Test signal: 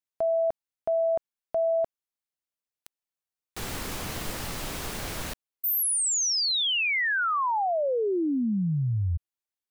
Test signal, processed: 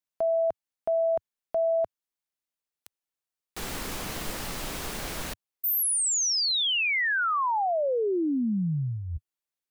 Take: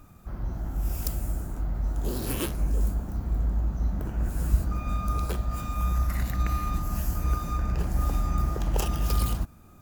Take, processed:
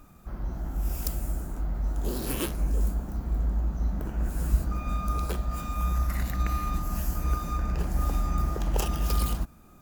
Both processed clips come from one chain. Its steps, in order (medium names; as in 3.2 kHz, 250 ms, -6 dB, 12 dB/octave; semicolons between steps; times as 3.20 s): peaking EQ 99 Hz -9.5 dB 0.47 oct